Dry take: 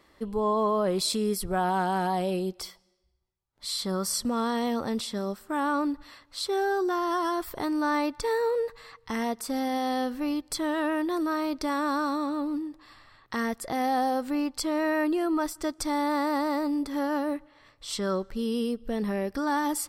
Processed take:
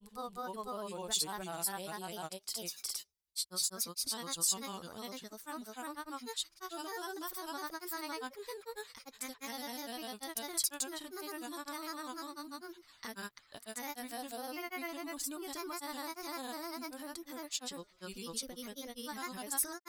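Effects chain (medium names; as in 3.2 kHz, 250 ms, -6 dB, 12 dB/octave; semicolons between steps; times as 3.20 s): granulator, spray 458 ms, pitch spread up and down by 3 st; pre-emphasis filter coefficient 0.9; trim +2.5 dB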